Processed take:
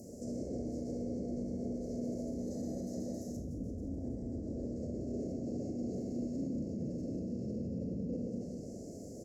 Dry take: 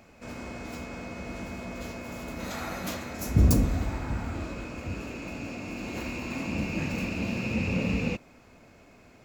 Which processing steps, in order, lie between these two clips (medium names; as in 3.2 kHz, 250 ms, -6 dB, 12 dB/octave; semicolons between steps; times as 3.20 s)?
treble shelf 12 kHz +9 dB; reverse; compression, threshold -40 dBFS, peak gain reduction 23 dB; reverse; inverse Chebyshev band-stop 920–3600 Hz, stop band 40 dB; peaking EQ 1.8 kHz +6.5 dB 0.74 oct; reverse bouncing-ball echo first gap 130 ms, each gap 1.1×, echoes 5; peak limiter -39.5 dBFS, peak gain reduction 12 dB; low-pass that closes with the level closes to 1.5 kHz, closed at -39.5 dBFS; high-pass 150 Hz 6 dB/octave; Schroeder reverb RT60 0.47 s, combs from 26 ms, DRR 6 dB; trim +9.5 dB